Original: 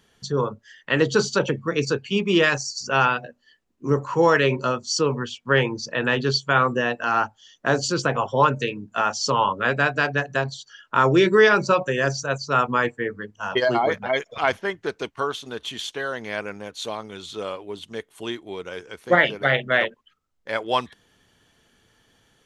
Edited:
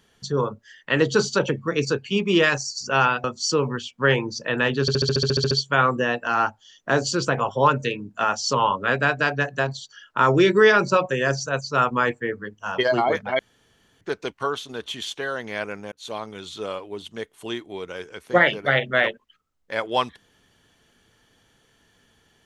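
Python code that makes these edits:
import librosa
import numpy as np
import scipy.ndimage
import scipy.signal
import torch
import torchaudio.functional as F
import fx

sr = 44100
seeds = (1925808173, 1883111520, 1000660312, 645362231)

y = fx.edit(x, sr, fx.cut(start_s=3.24, length_s=1.47),
    fx.stutter(start_s=6.28, slice_s=0.07, count=11),
    fx.room_tone_fill(start_s=14.16, length_s=0.62),
    fx.fade_in_span(start_s=16.69, length_s=0.25), tone=tone)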